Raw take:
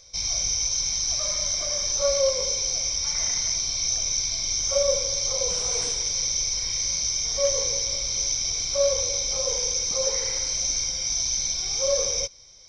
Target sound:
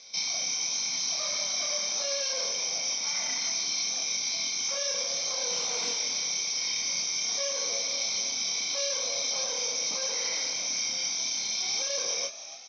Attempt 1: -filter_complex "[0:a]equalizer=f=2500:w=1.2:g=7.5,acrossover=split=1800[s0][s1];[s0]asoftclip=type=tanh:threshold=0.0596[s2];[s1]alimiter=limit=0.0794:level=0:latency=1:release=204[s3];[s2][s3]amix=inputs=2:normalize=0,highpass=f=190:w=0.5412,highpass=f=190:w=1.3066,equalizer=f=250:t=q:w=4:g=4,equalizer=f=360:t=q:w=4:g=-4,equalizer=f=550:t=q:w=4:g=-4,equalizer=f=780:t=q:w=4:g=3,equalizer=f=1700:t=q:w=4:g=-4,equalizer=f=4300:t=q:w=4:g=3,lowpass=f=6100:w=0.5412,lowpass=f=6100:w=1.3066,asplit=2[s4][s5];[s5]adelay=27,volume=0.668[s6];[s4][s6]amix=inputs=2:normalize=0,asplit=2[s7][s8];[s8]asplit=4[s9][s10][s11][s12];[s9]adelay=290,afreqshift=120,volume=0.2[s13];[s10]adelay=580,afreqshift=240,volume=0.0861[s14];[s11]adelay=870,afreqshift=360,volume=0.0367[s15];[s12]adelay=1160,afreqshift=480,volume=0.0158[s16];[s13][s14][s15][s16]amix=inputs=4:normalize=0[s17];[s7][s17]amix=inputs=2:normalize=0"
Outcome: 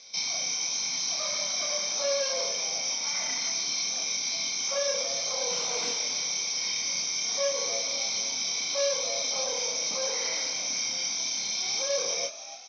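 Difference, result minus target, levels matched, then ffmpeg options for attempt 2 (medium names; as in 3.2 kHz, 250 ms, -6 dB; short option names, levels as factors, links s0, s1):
saturation: distortion -7 dB
-filter_complex "[0:a]equalizer=f=2500:w=1.2:g=7.5,acrossover=split=1800[s0][s1];[s0]asoftclip=type=tanh:threshold=0.0188[s2];[s1]alimiter=limit=0.0794:level=0:latency=1:release=204[s3];[s2][s3]amix=inputs=2:normalize=0,highpass=f=190:w=0.5412,highpass=f=190:w=1.3066,equalizer=f=250:t=q:w=4:g=4,equalizer=f=360:t=q:w=4:g=-4,equalizer=f=550:t=q:w=4:g=-4,equalizer=f=780:t=q:w=4:g=3,equalizer=f=1700:t=q:w=4:g=-4,equalizer=f=4300:t=q:w=4:g=3,lowpass=f=6100:w=0.5412,lowpass=f=6100:w=1.3066,asplit=2[s4][s5];[s5]adelay=27,volume=0.668[s6];[s4][s6]amix=inputs=2:normalize=0,asplit=2[s7][s8];[s8]asplit=4[s9][s10][s11][s12];[s9]adelay=290,afreqshift=120,volume=0.2[s13];[s10]adelay=580,afreqshift=240,volume=0.0861[s14];[s11]adelay=870,afreqshift=360,volume=0.0367[s15];[s12]adelay=1160,afreqshift=480,volume=0.0158[s16];[s13][s14][s15][s16]amix=inputs=4:normalize=0[s17];[s7][s17]amix=inputs=2:normalize=0"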